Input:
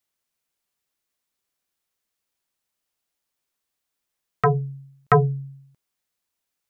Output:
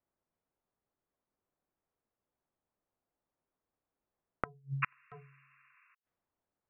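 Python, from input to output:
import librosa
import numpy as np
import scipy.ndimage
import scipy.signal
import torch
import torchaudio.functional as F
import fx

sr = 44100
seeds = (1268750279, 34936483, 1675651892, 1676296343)

y = fx.spec_paint(x, sr, seeds[0], shape='noise', start_s=4.82, length_s=1.13, low_hz=1000.0, high_hz=2800.0, level_db=-30.0)
y = fx.env_lowpass(y, sr, base_hz=900.0, full_db=-19.5)
y = fx.gate_flip(y, sr, shuts_db=-22.0, range_db=-40)
y = y * 10.0 ** (3.0 / 20.0)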